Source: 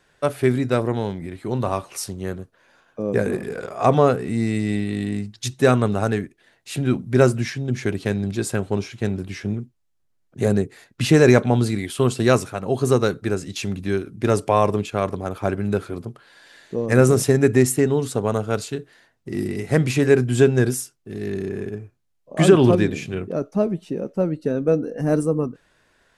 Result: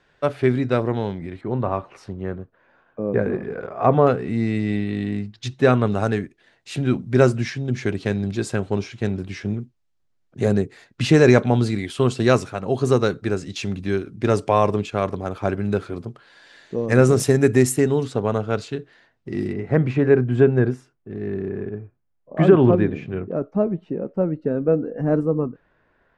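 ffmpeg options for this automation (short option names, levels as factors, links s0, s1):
-af "asetnsamples=n=441:p=0,asendcmd='1.41 lowpass f 1900;4.07 lowpass f 3800;5.87 lowpass f 6400;17.2 lowpass f 11000;18.03 lowpass f 4300;19.53 lowpass f 1700',lowpass=4300"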